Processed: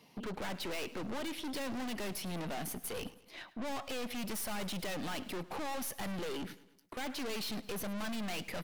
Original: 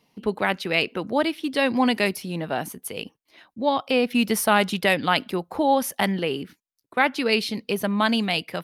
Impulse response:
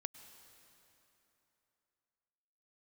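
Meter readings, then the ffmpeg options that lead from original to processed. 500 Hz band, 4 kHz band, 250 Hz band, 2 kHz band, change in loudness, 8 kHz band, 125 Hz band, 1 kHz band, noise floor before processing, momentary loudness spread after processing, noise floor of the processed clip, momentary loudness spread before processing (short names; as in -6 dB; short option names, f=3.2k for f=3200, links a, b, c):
-17.0 dB, -14.5 dB, -15.5 dB, -18.0 dB, -16.0 dB, -9.0 dB, -12.0 dB, -18.0 dB, -79 dBFS, 5 LU, -63 dBFS, 10 LU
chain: -filter_complex "[0:a]highpass=f=86:w=0.5412,highpass=f=86:w=1.3066,acompressor=threshold=-32dB:ratio=1.5,aeval=exprs='(tanh(141*val(0)+0.45)-tanh(0.45))/141':c=same,asplit=2[a][b];[b]aecho=0:1:106|212|318|424:0.119|0.0618|0.0321|0.0167[c];[a][c]amix=inputs=2:normalize=0,volume=5dB"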